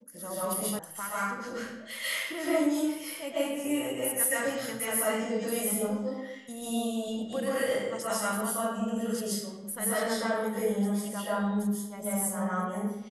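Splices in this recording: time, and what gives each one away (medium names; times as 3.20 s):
0.79 s: sound stops dead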